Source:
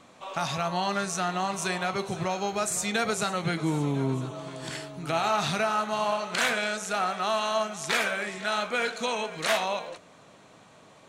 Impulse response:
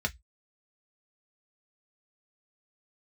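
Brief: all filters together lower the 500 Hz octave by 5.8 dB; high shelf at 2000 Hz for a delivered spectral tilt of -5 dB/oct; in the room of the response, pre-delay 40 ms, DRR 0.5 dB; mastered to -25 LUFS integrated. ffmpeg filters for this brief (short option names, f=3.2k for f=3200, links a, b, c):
-filter_complex "[0:a]equalizer=f=500:t=o:g=-7.5,highshelf=f=2k:g=-7.5,asplit=2[a][b];[1:a]atrim=start_sample=2205,adelay=40[c];[b][c]afir=irnorm=-1:irlink=0,volume=-7dB[d];[a][d]amix=inputs=2:normalize=0,volume=4dB"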